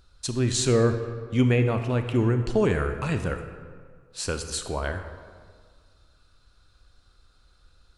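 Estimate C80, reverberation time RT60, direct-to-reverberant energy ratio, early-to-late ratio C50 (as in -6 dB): 9.5 dB, 1.8 s, 7.0 dB, 8.0 dB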